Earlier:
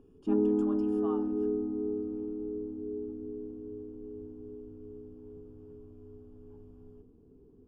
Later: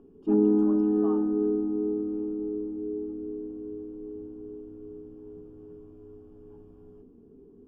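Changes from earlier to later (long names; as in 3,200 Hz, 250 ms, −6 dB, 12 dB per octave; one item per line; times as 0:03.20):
speech: add spectral tilt −4 dB per octave
background: send +10.5 dB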